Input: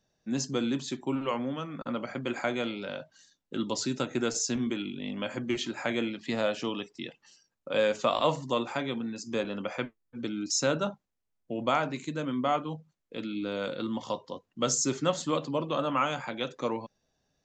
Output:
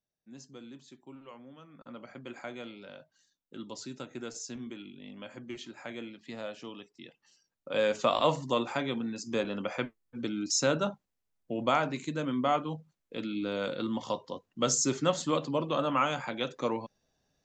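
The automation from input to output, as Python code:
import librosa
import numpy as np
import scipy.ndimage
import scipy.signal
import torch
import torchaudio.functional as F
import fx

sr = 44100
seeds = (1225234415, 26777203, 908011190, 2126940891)

y = fx.gain(x, sr, db=fx.line((1.44, -18.5), (2.08, -11.0), (6.95, -11.0), (8.0, 0.0)))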